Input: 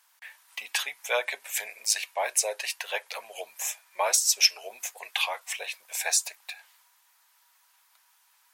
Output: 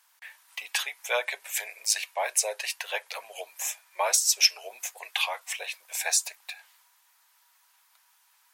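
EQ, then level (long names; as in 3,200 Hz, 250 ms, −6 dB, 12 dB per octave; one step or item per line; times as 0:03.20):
high-pass filter 390 Hz 12 dB per octave
0.0 dB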